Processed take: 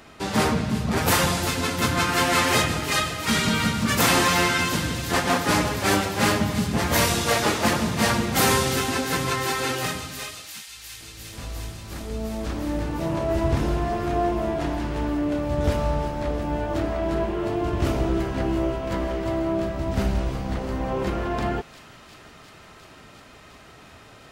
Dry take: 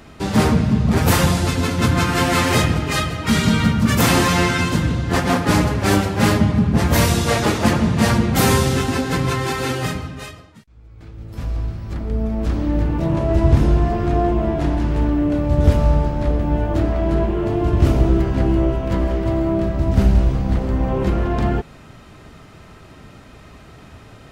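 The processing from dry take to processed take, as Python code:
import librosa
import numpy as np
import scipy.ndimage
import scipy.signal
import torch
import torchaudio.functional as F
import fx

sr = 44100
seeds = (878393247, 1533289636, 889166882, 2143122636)

p1 = fx.low_shelf(x, sr, hz=290.0, db=-10.5)
p2 = p1 + fx.echo_wet_highpass(p1, sr, ms=353, feedback_pct=84, hz=3100.0, wet_db=-11, dry=0)
y = p2 * 10.0 ** (-1.0 / 20.0)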